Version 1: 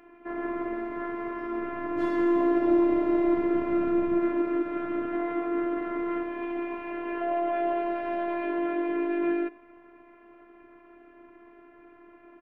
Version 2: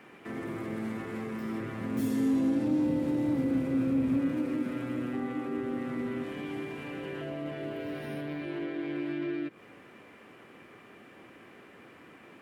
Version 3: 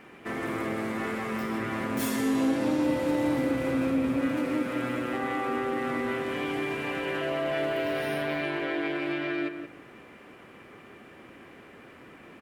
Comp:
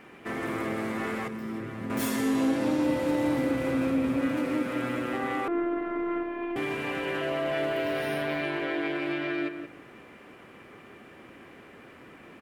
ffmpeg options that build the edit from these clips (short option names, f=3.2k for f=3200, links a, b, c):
-filter_complex "[2:a]asplit=3[a][b][c];[a]atrim=end=1.282[d];[1:a]atrim=start=1.278:end=1.902[e];[b]atrim=start=1.898:end=5.482[f];[0:a]atrim=start=5.478:end=6.562[g];[c]atrim=start=6.558[h];[d][e]acrossfade=d=0.004:c1=hsin:c2=hsin[i];[i][f]acrossfade=d=0.004:c1=hsin:c2=hsin[j];[j][g]acrossfade=d=0.004:c1=hsin:c2=hsin[k];[k][h]acrossfade=d=0.004:c1=hsin:c2=hsin"